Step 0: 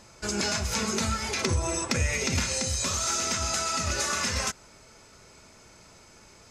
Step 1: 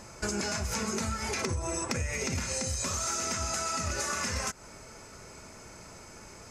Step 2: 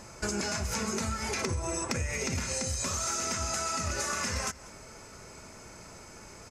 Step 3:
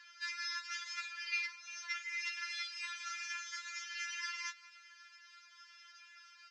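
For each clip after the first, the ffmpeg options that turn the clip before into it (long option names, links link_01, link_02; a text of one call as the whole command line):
ffmpeg -i in.wav -af "equalizer=frequency=3600:width_type=o:width=0.83:gain=-7.5,acompressor=threshold=-35dB:ratio=6,volume=5.5dB" out.wav
ffmpeg -i in.wav -af "aecho=1:1:194:0.0891" out.wav
ffmpeg -i in.wav -filter_complex "[0:a]asplit=2[link_01][link_02];[link_02]acrusher=samples=8:mix=1:aa=0.000001:lfo=1:lforange=4.8:lforate=0.55,volume=-3.5dB[link_03];[link_01][link_03]amix=inputs=2:normalize=0,asuperpass=centerf=2800:order=8:qfactor=0.75,afftfilt=real='re*4*eq(mod(b,16),0)':imag='im*4*eq(mod(b,16),0)':win_size=2048:overlap=0.75,volume=-2.5dB" out.wav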